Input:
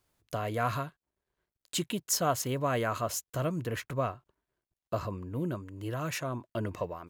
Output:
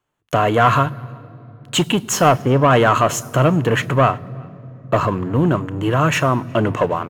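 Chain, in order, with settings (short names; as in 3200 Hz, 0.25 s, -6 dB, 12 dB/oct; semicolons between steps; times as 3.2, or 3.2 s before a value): 2.29–2.71 LPF 1700 Hz 12 dB/oct; sample leveller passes 3; outdoor echo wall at 63 m, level -28 dB; reverb RT60 3.5 s, pre-delay 3 ms, DRR 18 dB; gain +2.5 dB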